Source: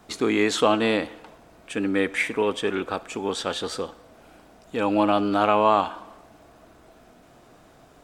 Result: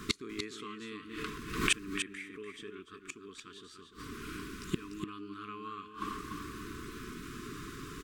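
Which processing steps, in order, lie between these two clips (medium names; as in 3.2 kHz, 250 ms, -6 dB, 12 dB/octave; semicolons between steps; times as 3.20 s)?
inverted gate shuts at -24 dBFS, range -31 dB; brick-wall FIR band-stop 450–1000 Hz; delay 294 ms -7.5 dB; 0.55–2.68 s: swell ahead of each attack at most 76 dB/s; trim +10 dB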